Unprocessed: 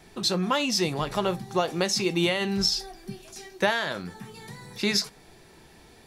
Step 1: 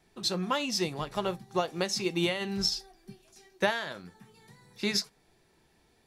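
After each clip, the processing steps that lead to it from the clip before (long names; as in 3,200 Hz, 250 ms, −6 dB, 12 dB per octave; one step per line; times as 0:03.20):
expander for the loud parts 1.5 to 1, over −42 dBFS
level −2.5 dB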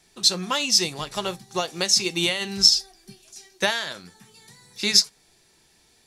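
parametric band 7,100 Hz +14 dB 2.6 octaves
level +1 dB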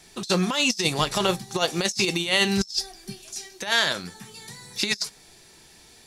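compressor whose output falls as the input rises −27 dBFS, ratio −0.5
level +3.5 dB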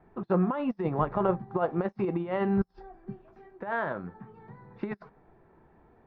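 low-pass filter 1,300 Hz 24 dB per octave
level −1.5 dB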